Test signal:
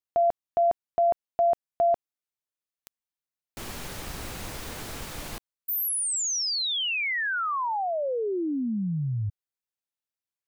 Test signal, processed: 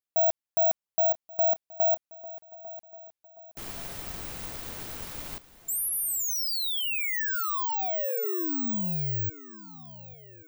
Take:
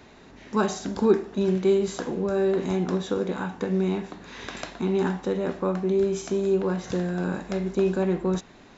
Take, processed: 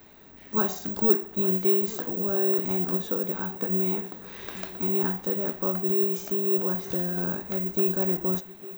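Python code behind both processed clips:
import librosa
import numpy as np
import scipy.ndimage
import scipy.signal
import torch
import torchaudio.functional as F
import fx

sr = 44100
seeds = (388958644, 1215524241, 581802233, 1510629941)

y = (np.kron(x[::2], np.eye(2)[0]) * 2)[:len(x)]
y = fx.echo_swing(y, sr, ms=1131, ratio=3, feedback_pct=39, wet_db=-18.0)
y = y * librosa.db_to_amplitude(-4.5)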